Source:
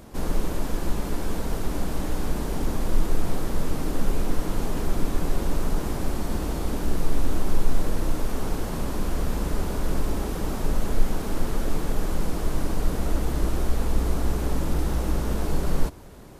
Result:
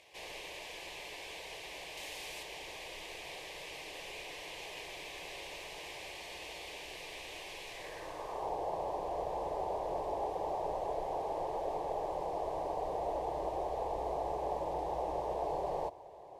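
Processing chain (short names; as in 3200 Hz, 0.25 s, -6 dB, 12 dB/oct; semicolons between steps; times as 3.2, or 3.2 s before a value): band-pass sweep 2400 Hz -> 810 Hz, 7.69–8.54; 1.97–2.43 high shelf 5200 Hz +7.5 dB; fixed phaser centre 570 Hz, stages 4; gain +7 dB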